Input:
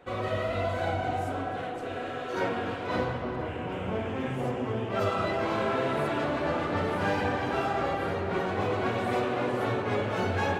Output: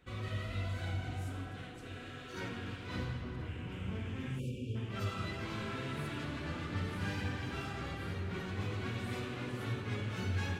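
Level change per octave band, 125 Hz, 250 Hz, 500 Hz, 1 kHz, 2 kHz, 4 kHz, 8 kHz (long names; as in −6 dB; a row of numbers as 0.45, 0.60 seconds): −2.5 dB, −9.0 dB, −17.0 dB, −16.5 dB, −9.5 dB, −5.5 dB, can't be measured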